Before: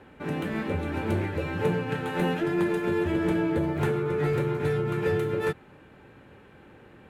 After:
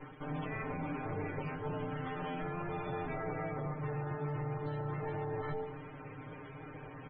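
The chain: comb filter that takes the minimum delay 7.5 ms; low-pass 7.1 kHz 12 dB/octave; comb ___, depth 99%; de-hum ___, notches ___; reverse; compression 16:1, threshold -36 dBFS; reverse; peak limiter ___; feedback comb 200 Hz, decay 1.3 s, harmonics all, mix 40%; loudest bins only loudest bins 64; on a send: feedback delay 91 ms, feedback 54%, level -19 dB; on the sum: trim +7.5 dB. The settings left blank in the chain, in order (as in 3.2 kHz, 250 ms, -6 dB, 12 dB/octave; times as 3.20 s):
6.6 ms, 88.18 Hz, 10, -33 dBFS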